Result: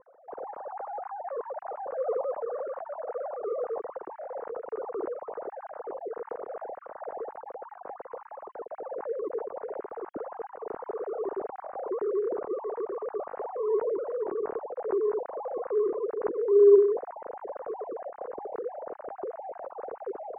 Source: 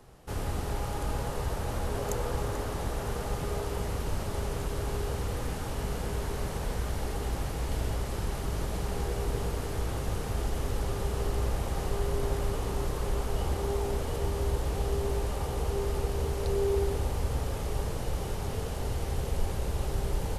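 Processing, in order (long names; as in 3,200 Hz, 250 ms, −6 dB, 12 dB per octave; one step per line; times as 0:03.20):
three sine waves on the formant tracks
Bessel low-pass filter 850 Hz, order 6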